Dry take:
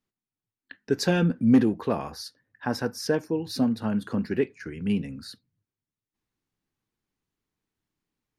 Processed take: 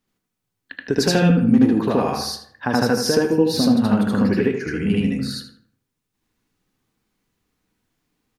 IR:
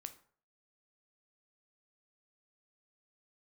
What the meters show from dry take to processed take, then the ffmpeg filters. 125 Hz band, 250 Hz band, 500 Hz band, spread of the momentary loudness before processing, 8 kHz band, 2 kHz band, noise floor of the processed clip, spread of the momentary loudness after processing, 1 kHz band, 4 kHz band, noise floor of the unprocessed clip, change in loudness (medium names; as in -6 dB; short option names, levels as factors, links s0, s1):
+8.0 dB, +7.5 dB, +8.0 dB, 17 LU, +10.5 dB, +8.0 dB, -79 dBFS, 13 LU, +9.0 dB, +10.5 dB, under -85 dBFS, +7.0 dB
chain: -filter_complex "[0:a]acompressor=threshold=0.0562:ratio=6,asplit=2[s0][s1];[s1]adelay=80,lowpass=f=2200:p=1,volume=0.473,asplit=2[s2][s3];[s3]adelay=80,lowpass=f=2200:p=1,volume=0.41,asplit=2[s4][s5];[s5]adelay=80,lowpass=f=2200:p=1,volume=0.41,asplit=2[s6][s7];[s7]adelay=80,lowpass=f=2200:p=1,volume=0.41,asplit=2[s8][s9];[s9]adelay=80,lowpass=f=2200:p=1,volume=0.41[s10];[s0][s2][s4][s6][s8][s10]amix=inputs=6:normalize=0,asplit=2[s11][s12];[1:a]atrim=start_sample=2205,asetrate=48510,aresample=44100,adelay=76[s13];[s12][s13]afir=irnorm=-1:irlink=0,volume=2.51[s14];[s11][s14]amix=inputs=2:normalize=0,volume=2.37"